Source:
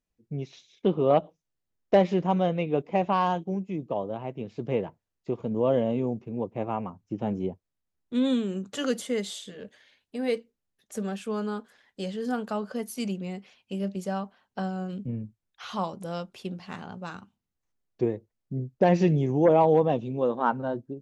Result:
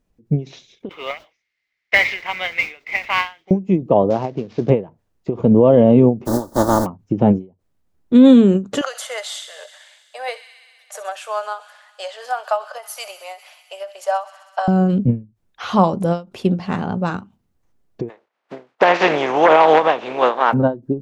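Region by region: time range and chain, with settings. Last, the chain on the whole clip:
0.89–3.51 s: resonant high-pass 2.1 kHz, resonance Q 11 + modulation noise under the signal 13 dB + resonant high shelf 7 kHz -13 dB, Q 1.5
4.10–4.70 s: CVSD coder 32 kbps + bass shelf 180 Hz -7.5 dB
6.25–6.85 s: spectral contrast reduction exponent 0.31 + Butterworth band-stop 2.5 kHz, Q 0.77 + comb 3.4 ms, depth 51%
8.81–14.68 s: Chebyshev high-pass 610 Hz, order 5 + feedback echo behind a high-pass 64 ms, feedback 82%, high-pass 2 kHz, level -14 dB
18.08–20.52 s: spectral contrast reduction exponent 0.48 + band-pass 710–2500 Hz
whole clip: tilt shelf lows +5.5 dB, about 1.4 kHz; loudness maximiser +14 dB; endings held to a fixed fall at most 210 dB/s; trim -1 dB

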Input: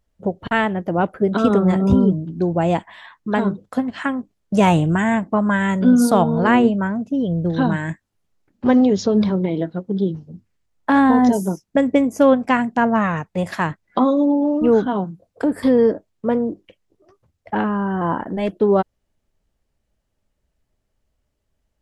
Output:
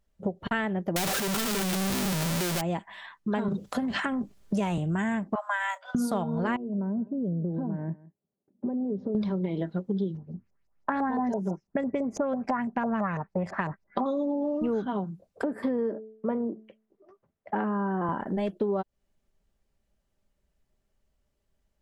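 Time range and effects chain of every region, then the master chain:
0.96–2.61 s: one-bit comparator + treble shelf 3.1 kHz +11.5 dB
3.48–4.78 s: transient shaper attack -1 dB, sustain +11 dB + three bands compressed up and down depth 40%
5.35–5.95 s: median filter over 3 samples + steep high-pass 640 Hz 72 dB/octave + gate -37 dBFS, range -10 dB
6.56–9.15 s: compression 12:1, threshold -21 dBFS + Butterworth band-pass 300 Hz, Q 0.64 + delay 163 ms -20.5 dB
10.17–14.06 s: peaking EQ 3.4 kHz -12 dB 0.64 oct + compression 2:1, threshold -16 dBFS + LFO low-pass saw up 6 Hz 570–6100 Hz
15.43–18.09 s: three-band isolator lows -14 dB, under 160 Hz, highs -14 dB, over 2.2 kHz + de-hum 218.7 Hz, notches 3
whole clip: comb 5.1 ms, depth 31%; compression 6:1, threshold -22 dBFS; trim -3.5 dB

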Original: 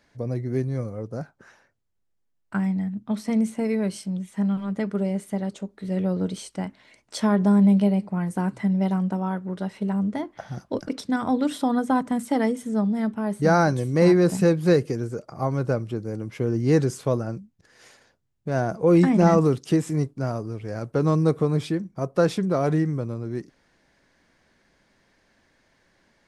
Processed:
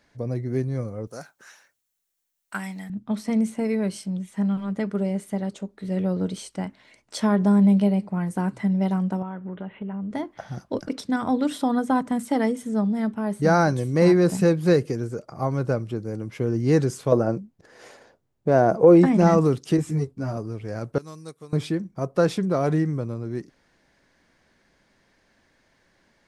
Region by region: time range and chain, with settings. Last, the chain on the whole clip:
1.07–2.90 s: tilt EQ +4.5 dB/octave + band-stop 4.9 kHz, Q 16
9.22–10.11 s: steep low-pass 3.3 kHz 72 dB/octave + compression 4:1, threshold -29 dBFS
17.12–19.06 s: compression 2:1, threshold -21 dBFS + peaking EQ 530 Hz +11 dB 2.6 oct
19.77–20.37 s: peaking EQ 67 Hz +8 dB 2.4 oct + three-phase chorus
20.98–21.53 s: pre-emphasis filter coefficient 0.9 + upward expansion, over -54 dBFS
whole clip: none

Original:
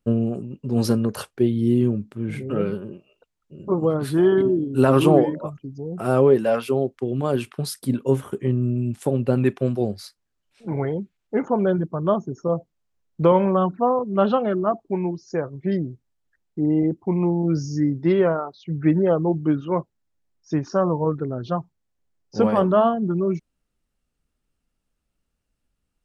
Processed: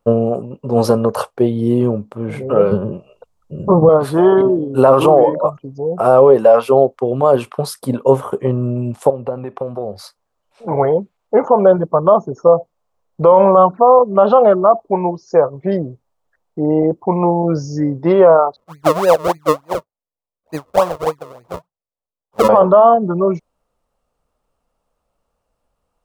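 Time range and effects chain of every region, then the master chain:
2.71–3.89 s: low-pass that closes with the level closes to 1.4 kHz, closed at -18.5 dBFS + tone controls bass +14 dB, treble +6 dB
9.10–9.96 s: treble shelf 4.2 kHz -12 dB + compression, threshold -29 dBFS
18.56–22.49 s: decimation with a swept rate 39× 3.4 Hz + upward expansion 2.5:1, over -29 dBFS
whole clip: high-order bell 750 Hz +14 dB; peak limiter -4 dBFS; trim +3 dB

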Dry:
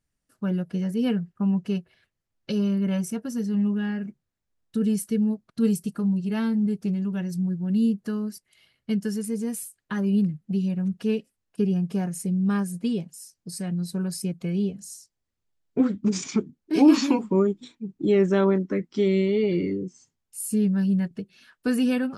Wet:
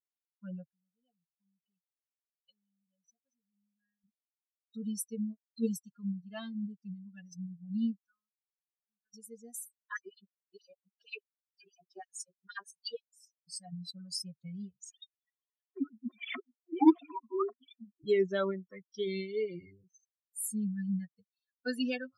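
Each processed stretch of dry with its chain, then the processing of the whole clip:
0.64–4.04 s: low-pass 2.4 kHz 6 dB/octave + compression 2.5:1, threshold -44 dBFS
8.06–9.14 s: four-pole ladder low-pass 1.5 kHz, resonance 80% + compression 3:1, threshold -42 dBFS
9.80–13.13 s: treble shelf 9.1 kHz -4 dB + LFO high-pass sine 6.3 Hz 360–5400 Hz
14.90–18.04 s: formants replaced by sine waves + upward compressor, threshold -20 dBFS + hard clipper -8 dBFS
whole clip: expander on every frequency bin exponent 3; high-pass 430 Hz 6 dB/octave; peaking EQ 4.8 kHz +7 dB 0.71 oct

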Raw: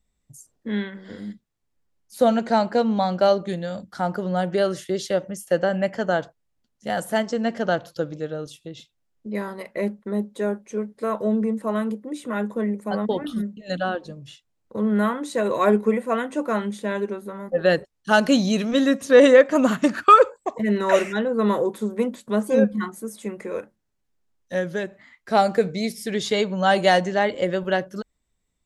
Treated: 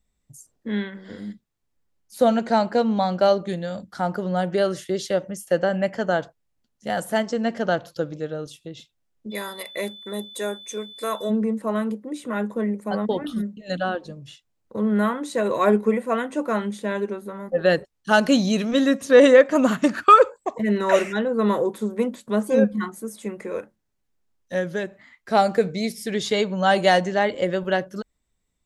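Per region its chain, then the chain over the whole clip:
9.30–11.29 s: RIAA curve recording + whistle 3.5 kHz -40 dBFS
whole clip: none

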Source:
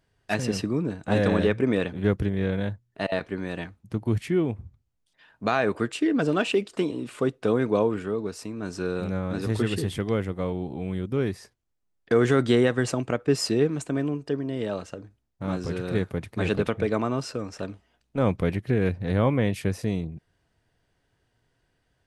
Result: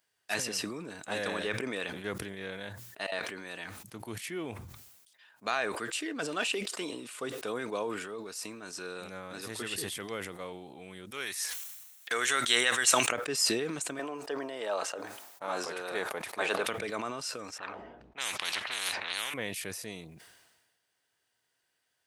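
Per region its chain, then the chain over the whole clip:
11.11–13.12 s: band-stop 4.8 kHz, Q 7.9 + upward compressor, threshold -33 dBFS + tilt shelf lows -9.5 dB, about 760 Hz
13.99–16.66 s: high-pass 350 Hz 6 dB/octave + peaking EQ 770 Hz +12 dB 2 oct
17.58–19.34 s: level-controlled noise filter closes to 370 Hz, open at -17.5 dBFS + spectrum-flattening compressor 10:1
whole clip: high-pass 1.4 kHz 6 dB/octave; treble shelf 8.1 kHz +12 dB; decay stretcher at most 43 dB/s; trim -2.5 dB

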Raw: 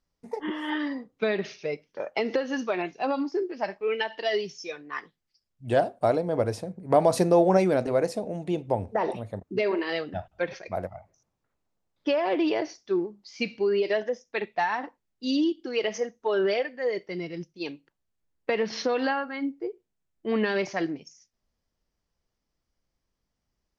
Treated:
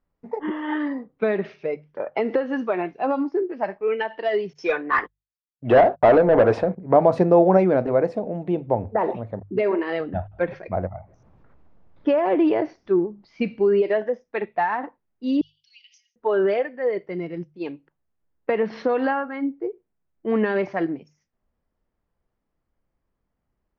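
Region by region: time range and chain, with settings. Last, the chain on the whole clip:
4.53–6.75 s: gate -49 dBFS, range -38 dB + overdrive pedal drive 23 dB, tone 3.6 kHz, clips at -10.5 dBFS
10.00–13.82 s: bass shelf 180 Hz +8.5 dB + upward compressor, threshold -42 dBFS
15.41–16.16 s: peaking EQ 5.7 kHz +13 dB 1.4 oct + compression 12:1, threshold -35 dBFS + steep high-pass 2.6 kHz 48 dB/octave
whole clip: low-pass 1.7 kHz 12 dB/octave; hum notches 50/100/150 Hz; trim +4.5 dB

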